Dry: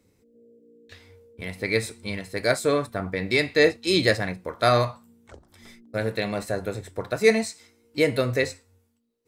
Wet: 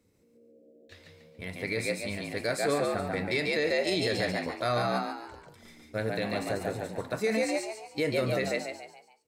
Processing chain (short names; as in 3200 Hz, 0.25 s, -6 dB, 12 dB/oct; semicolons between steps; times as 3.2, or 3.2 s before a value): frequency-shifting echo 0.142 s, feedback 41%, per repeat +71 Hz, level -3 dB; limiter -13.5 dBFS, peak gain reduction 10 dB; gain -5 dB